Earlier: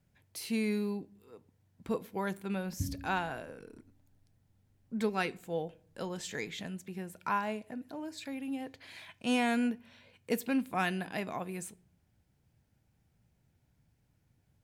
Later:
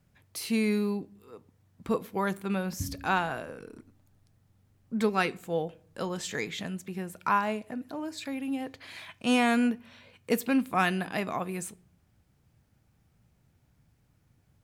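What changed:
speech +5.0 dB; master: add peaking EQ 1.2 kHz +7.5 dB 0.2 oct

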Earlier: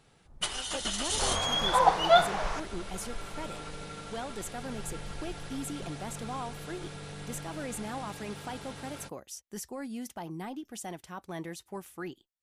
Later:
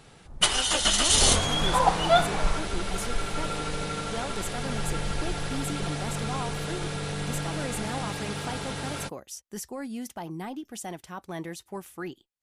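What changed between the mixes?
speech +3.0 dB; first sound +10.5 dB

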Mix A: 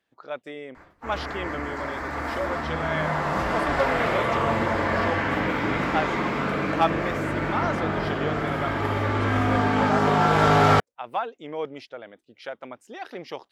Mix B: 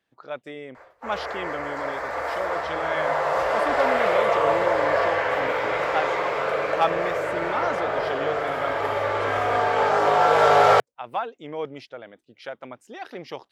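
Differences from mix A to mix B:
background: add resonant low shelf 350 Hz -13 dB, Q 3; master: add peaking EQ 130 Hz +4.5 dB 0.5 oct

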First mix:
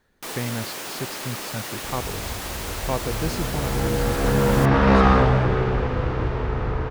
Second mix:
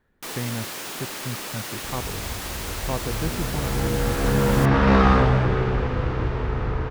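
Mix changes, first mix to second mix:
speech: add distance through air 360 m; master: add peaking EQ 640 Hz -2.5 dB 1.5 oct

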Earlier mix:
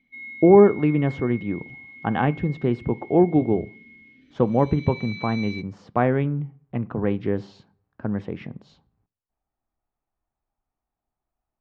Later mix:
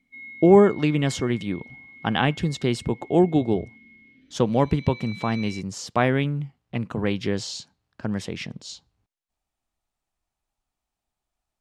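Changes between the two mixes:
speech: remove low-pass 1.3 kHz 12 dB/octave; reverb: off

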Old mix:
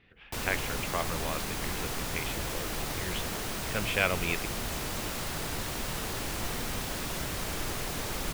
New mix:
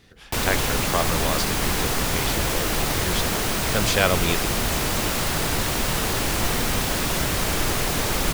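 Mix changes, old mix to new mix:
speech: remove four-pole ladder low-pass 3 kHz, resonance 50%; background +11.0 dB

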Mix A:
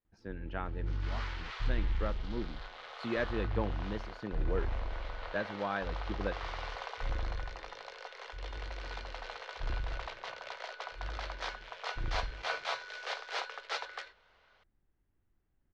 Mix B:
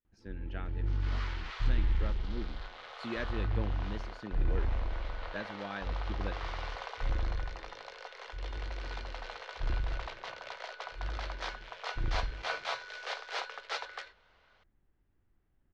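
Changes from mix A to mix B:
speech: add graphic EQ 125/500/1000/8000 Hz -4/-4/-11/+4 dB; first sound +3.5 dB

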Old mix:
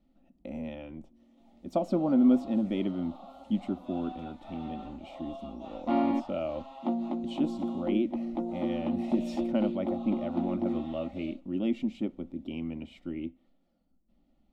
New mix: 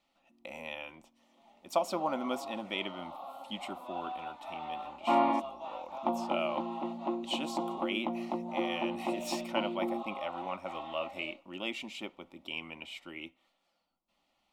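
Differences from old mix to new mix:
speech: add tilt EQ +4.5 dB/octave; second sound: entry -0.80 s; master: add fifteen-band graphic EQ 250 Hz -8 dB, 1 kHz +11 dB, 2.5 kHz +5 dB

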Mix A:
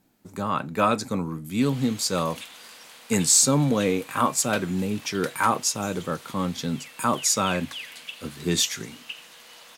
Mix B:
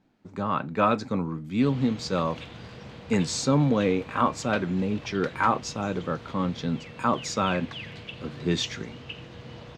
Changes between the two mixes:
background: remove high-pass 960 Hz 12 dB/octave; master: add distance through air 180 m

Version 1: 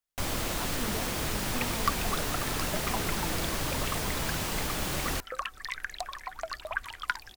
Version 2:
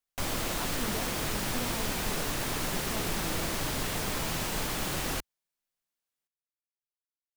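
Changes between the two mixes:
second sound: muted; master: add peaking EQ 64 Hz -5.5 dB 0.83 oct

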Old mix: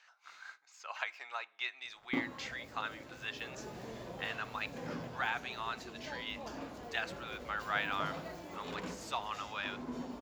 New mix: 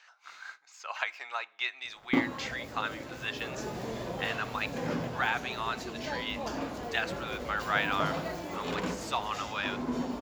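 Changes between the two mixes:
speech +5.5 dB; background +9.0 dB

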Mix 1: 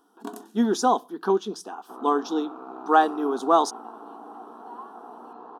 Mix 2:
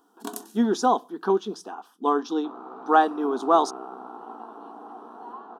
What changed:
speech: add treble shelf 8.1 kHz -9.5 dB; first sound: add treble shelf 2.6 kHz +11.5 dB; second sound: entry +0.55 s

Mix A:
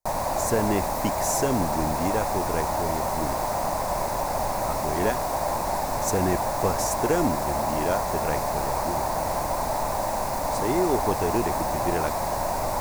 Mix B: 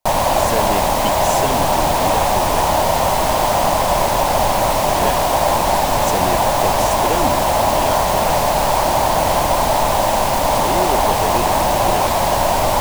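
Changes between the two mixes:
background +10.5 dB; master: add peaking EQ 3.1 kHz +14 dB 0.48 oct

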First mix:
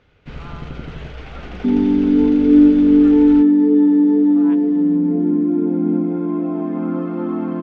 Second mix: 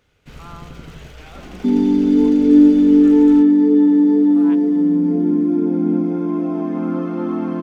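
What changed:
first sound -6.5 dB; master: remove distance through air 200 m

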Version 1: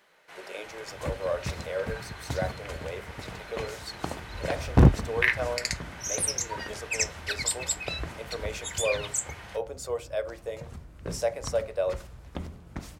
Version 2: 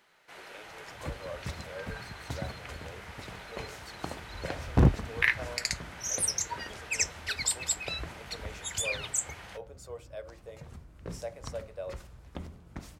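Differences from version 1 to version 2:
speech -11.5 dB; first sound: send -7.5 dB; second sound -4.5 dB

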